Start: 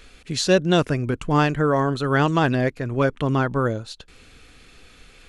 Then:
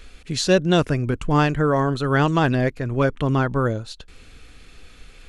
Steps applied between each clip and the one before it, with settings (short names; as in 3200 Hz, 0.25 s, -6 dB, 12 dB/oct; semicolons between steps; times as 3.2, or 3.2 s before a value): low shelf 72 Hz +8 dB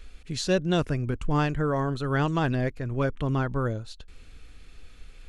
low shelf 85 Hz +8 dB; gain -7.5 dB